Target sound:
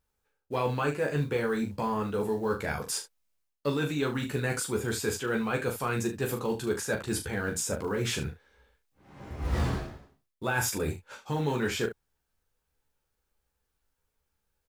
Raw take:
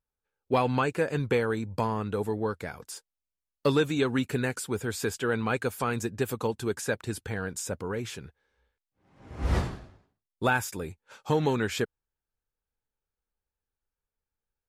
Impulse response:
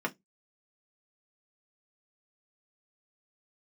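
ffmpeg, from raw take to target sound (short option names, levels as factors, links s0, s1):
-af "areverse,acompressor=threshold=0.0141:ratio=6,areverse,acrusher=bits=8:mode=log:mix=0:aa=0.000001,aecho=1:1:14|40|74:0.631|0.473|0.251,volume=2.51"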